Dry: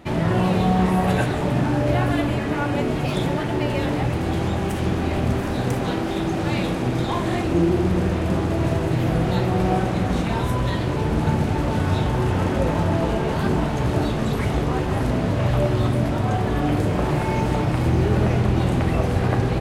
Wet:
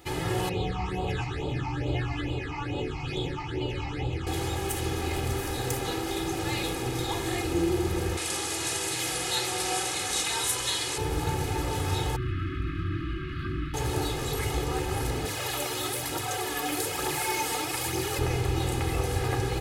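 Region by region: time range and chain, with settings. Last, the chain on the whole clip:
0.49–4.27 LPF 3800 Hz + phaser stages 8, 2.3 Hz, lowest notch 460–1800 Hz
8.17–10.98 LPF 10000 Hz 24 dB/oct + tilt +4 dB/oct
12.16–13.74 brick-wall FIR band-stop 370–1100 Hz + air absorption 410 m
15.25–18.19 HPF 180 Hz 6 dB/oct + tilt +2 dB/oct + phaser 1.1 Hz, delay 4.5 ms, feedback 43%
whole clip: pre-emphasis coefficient 0.8; comb 2.4 ms, depth 81%; gain +4 dB

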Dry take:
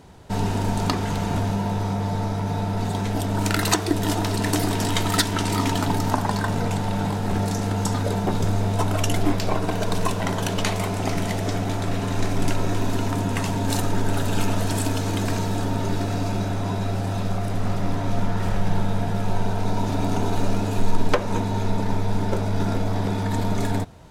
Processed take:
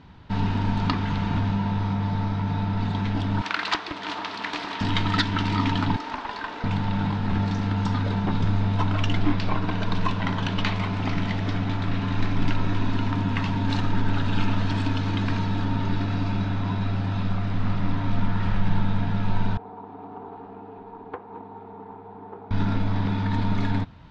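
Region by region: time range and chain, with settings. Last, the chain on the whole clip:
3.41–4.81 HPF 540 Hz + Doppler distortion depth 0.56 ms
5.96–6.64 steep high-pass 310 Hz + tube stage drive 22 dB, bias 0.4
19.57–22.51 double band-pass 580 Hz, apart 0.75 oct + air absorption 76 m + Doppler distortion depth 0.19 ms
whole clip: LPF 4100 Hz 24 dB/oct; band shelf 520 Hz -8.5 dB 1.3 oct

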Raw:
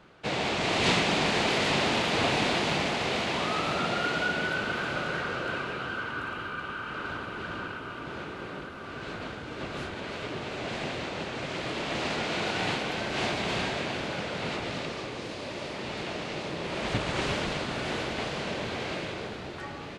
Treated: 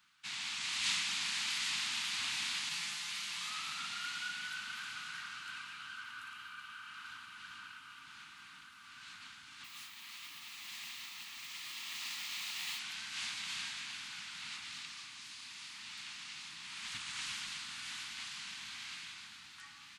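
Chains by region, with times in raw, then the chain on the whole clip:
2.69–3.5 high shelf 8800 Hz +6 dB + comb 5.8 ms, depth 86% + detuned doubles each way 41 cents
9.64–12.79 notch 1500 Hz, Q 5.2 + modulation noise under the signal 26 dB + low shelf 170 Hz -8.5 dB
whole clip: Chebyshev band-stop 230–1100 Hz, order 2; pre-emphasis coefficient 0.97; gain +1 dB

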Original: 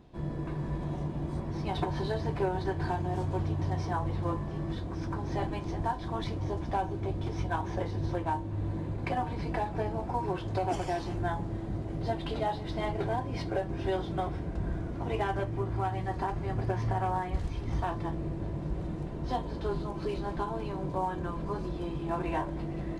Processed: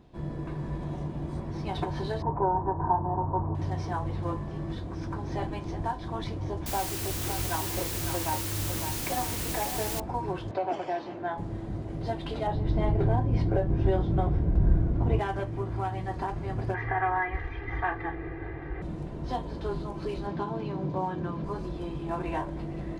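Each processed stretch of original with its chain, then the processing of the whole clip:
2.22–3.55 LPF 1200 Hz 24 dB/oct + bell 940 Hz +13.5 dB 0.52 oct
6.66–10 bell 150 Hz -4 dB 1 oct + requantised 6-bit, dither triangular + echo 0.555 s -7.5 dB
10.51–11.38 BPF 260–3400 Hz + bell 610 Hz +6 dB 0.25 oct
12.47–15.19 tilt -3 dB/oct + doubler 28 ms -13 dB
16.74–18.82 synth low-pass 1900 Hz, resonance Q 5.4 + low shelf 440 Hz -7 dB + comb 2.5 ms, depth 98%
20.27–21.44 Chebyshev band-pass 140–4900 Hz + low shelf 330 Hz +6 dB
whole clip: dry

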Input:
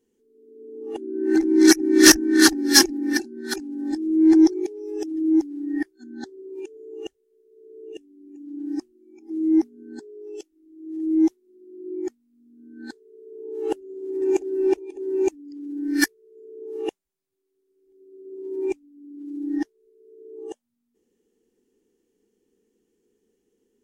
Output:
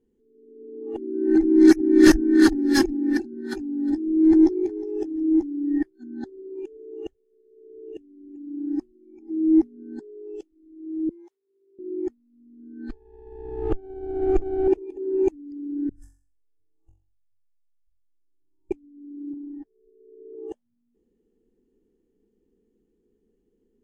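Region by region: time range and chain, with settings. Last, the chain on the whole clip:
3.32–5.78 doubler 14 ms -11 dB + feedback echo 0.362 s, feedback 27%, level -19.5 dB
11.09–11.79 HPF 910 Hz + compressor 10:1, threshold -46 dBFS + frequency shift +24 Hz
12.89–14.68 minimum comb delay 0.44 ms + LPF 6000 Hz + notch 1000 Hz, Q 13
15.89–18.71 inverse Chebyshev band-stop 180–4600 Hz + air absorption 140 m + flutter echo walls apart 3.7 m, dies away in 0.43 s
19.33–20.35 LPF 1000 Hz 6 dB/oct + compressor 20:1, threshold -38 dBFS + comb 7.4 ms, depth 48%
whole clip: tilt -3.5 dB/oct; notch 5700 Hz, Q 10; gain -4.5 dB

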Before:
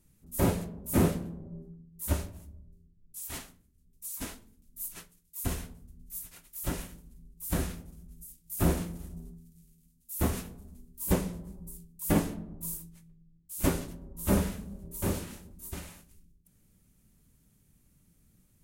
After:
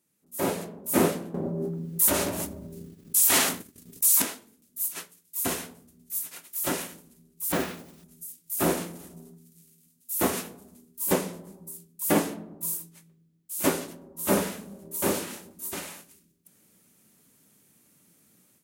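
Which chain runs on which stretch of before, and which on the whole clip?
1.34–4.22 expander -52 dBFS + fast leveller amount 70%
7.52–8.04 LPF 3600 Hz + modulation noise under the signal 19 dB
whole clip: AGC gain up to 13.5 dB; HPF 290 Hz 12 dB/oct; gain -4 dB

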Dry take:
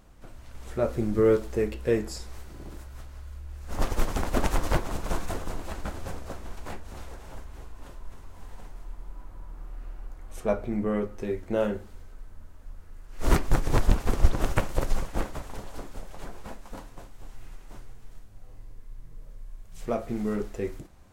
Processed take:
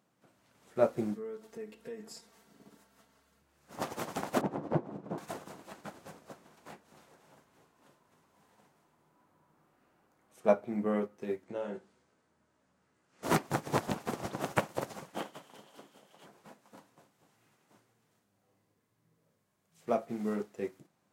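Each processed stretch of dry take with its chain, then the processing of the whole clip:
1.14–3.42 notch 2400 Hz, Q 17 + compressor 12:1, threshold -33 dBFS + comb 4.4 ms, depth 68%
4.41–5.18 band-pass 300 Hz, Q 0.72 + low shelf 330 Hz +7.5 dB
11.44–13.23 LPF 9200 Hz 24 dB/oct + compressor 8:1, threshold -28 dBFS + doubler 16 ms -6 dB
15.15–16.26 HPF 170 Hz + bell 3100 Hz +11 dB 0.26 oct
whole clip: Chebyshev high-pass 150 Hz, order 3; dynamic EQ 760 Hz, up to +4 dB, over -41 dBFS, Q 1.9; upward expander 1.5:1, over -46 dBFS

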